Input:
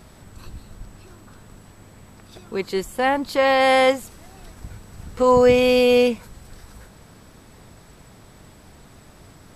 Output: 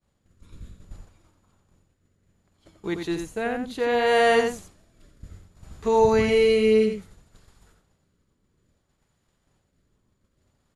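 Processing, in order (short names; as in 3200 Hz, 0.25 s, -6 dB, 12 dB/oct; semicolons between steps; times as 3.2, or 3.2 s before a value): expander -34 dBFS; rotary speaker horn 0.7 Hz; wide varispeed 0.888×; outdoor echo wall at 15 m, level -6 dB; gain -3 dB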